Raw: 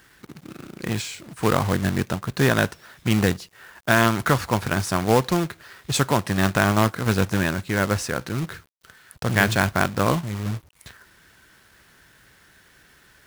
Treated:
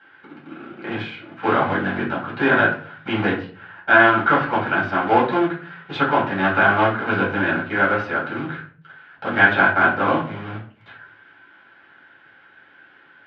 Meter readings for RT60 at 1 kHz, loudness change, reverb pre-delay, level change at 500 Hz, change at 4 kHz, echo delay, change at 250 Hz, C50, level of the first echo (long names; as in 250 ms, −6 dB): 0.35 s, +3.5 dB, 4 ms, +2.5 dB, −3.0 dB, no echo audible, 0.0 dB, 7.5 dB, no echo audible